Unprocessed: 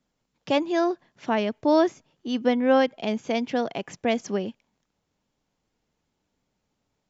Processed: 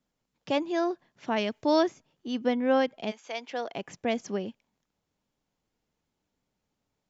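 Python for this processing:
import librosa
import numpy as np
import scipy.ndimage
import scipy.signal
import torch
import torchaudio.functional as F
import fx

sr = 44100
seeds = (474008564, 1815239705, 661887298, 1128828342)

y = fx.high_shelf(x, sr, hz=2000.0, db=8.5, at=(1.36, 1.83))
y = fx.highpass(y, sr, hz=fx.line((3.1, 1100.0), (3.72, 370.0)), slope=12, at=(3.1, 3.72), fade=0.02)
y = F.gain(torch.from_numpy(y), -4.5).numpy()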